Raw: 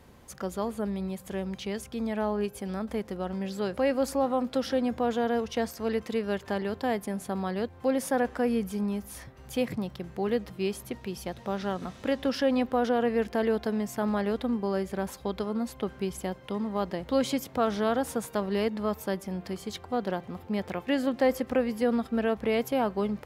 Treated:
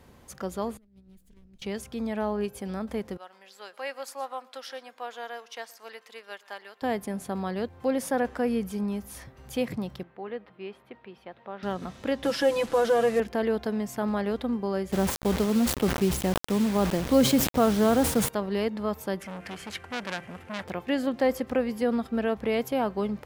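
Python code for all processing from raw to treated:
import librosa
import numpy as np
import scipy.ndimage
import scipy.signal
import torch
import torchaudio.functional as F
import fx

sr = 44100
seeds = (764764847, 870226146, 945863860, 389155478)

y = fx.chain(x, sr, fx.lower_of_two(delay_ms=4.4),
    fx.tone_stack(knobs='10-0-1'),
    fx.over_compress(threshold_db=-54.0, ratio=-0.5), at=(0.77, 1.62))
y = fx.chain(y, sr, fx.highpass(hz=930.0, slope=12),
    fx.echo_single(ms=122, db=-19.0),
    fx.upward_expand(threshold_db=-45.0, expansion=1.5), at=(3.17, 6.82))
y = fx.chain(y, sr, fx.highpass(hz=860.0, slope=6),
    fx.air_absorb(metres=490.0), at=(10.03, 11.63))
y = fx.chain(y, sr, fx.delta_mod(bps=64000, step_db=-39.0),
    fx.comb(ms=6.0, depth=0.97), at=(12.23, 13.2))
y = fx.chain(y, sr, fx.low_shelf(hz=470.0, db=9.0),
    fx.quant_dither(seeds[0], bits=6, dither='none'),
    fx.sustainer(db_per_s=87.0), at=(14.92, 18.29))
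y = fx.chain(y, sr, fx.cvsd(bps=64000),
    fx.band_shelf(hz=2000.0, db=11.0, octaves=1.3),
    fx.transformer_sat(knee_hz=2700.0), at=(19.2, 20.64))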